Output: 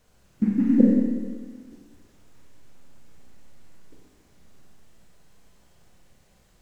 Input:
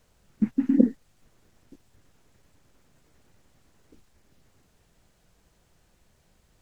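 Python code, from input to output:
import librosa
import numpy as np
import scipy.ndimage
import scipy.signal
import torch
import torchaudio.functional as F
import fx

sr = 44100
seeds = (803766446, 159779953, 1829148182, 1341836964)

y = fx.echo_feedback(x, sr, ms=187, feedback_pct=40, wet_db=-11.0)
y = fx.rev_schroeder(y, sr, rt60_s=1.3, comb_ms=31, drr_db=-1.5)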